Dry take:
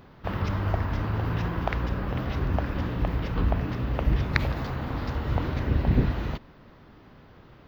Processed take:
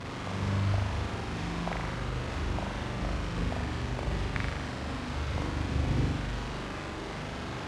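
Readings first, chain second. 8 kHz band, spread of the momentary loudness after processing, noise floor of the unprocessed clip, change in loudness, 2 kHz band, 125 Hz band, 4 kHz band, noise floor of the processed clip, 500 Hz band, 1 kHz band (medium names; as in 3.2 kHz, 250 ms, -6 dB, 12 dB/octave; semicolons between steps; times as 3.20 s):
no reading, 7 LU, -52 dBFS, -5.0 dB, -2.0 dB, -5.0 dB, +2.0 dB, -38 dBFS, -3.5 dB, -2.5 dB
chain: one-bit delta coder 64 kbps, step -25 dBFS; high-pass 46 Hz; companded quantiser 6-bit; distance through air 91 m; on a send: flutter echo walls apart 7 m, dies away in 0.96 s; on the sum: trim -8.5 dB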